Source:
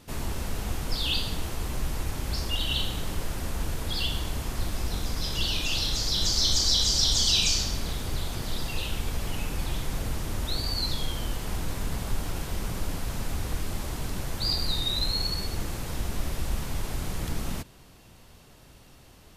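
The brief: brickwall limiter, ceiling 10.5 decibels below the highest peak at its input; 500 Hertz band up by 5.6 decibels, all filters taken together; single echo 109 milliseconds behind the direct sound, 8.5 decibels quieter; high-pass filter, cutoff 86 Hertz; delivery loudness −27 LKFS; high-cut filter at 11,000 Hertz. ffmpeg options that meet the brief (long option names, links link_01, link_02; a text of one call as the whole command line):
ffmpeg -i in.wav -af "highpass=86,lowpass=11000,equalizer=frequency=500:width_type=o:gain=7,alimiter=limit=-20.5dB:level=0:latency=1,aecho=1:1:109:0.376,volume=4dB" out.wav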